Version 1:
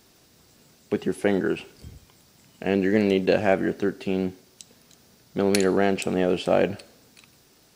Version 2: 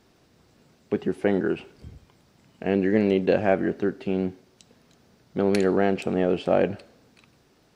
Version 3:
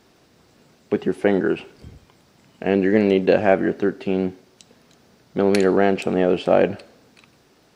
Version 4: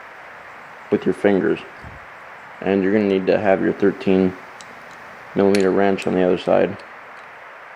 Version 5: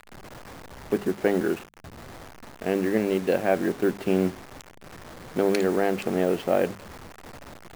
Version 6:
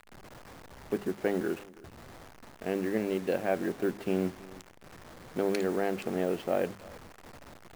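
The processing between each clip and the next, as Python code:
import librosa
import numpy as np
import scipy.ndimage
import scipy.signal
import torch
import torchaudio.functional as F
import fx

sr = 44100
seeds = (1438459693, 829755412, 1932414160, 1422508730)

y1 = fx.lowpass(x, sr, hz=2000.0, slope=6)
y2 = fx.low_shelf(y1, sr, hz=160.0, db=-6.0)
y2 = F.gain(torch.from_numpy(y2), 5.5).numpy()
y3 = fx.rider(y2, sr, range_db=10, speed_s=0.5)
y3 = fx.dmg_noise_band(y3, sr, seeds[0], low_hz=480.0, high_hz=2100.0, level_db=-41.0)
y3 = F.gain(torch.from_numpy(y3), 2.0).numpy()
y4 = fx.delta_hold(y3, sr, step_db=-29.5)
y4 = fx.hum_notches(y4, sr, base_hz=50, count=4)
y4 = F.gain(torch.from_numpy(y4), -6.5).numpy()
y5 = y4 + 10.0 ** (-21.5 / 20.0) * np.pad(y4, (int(326 * sr / 1000.0), 0))[:len(y4)]
y5 = F.gain(torch.from_numpy(y5), -6.5).numpy()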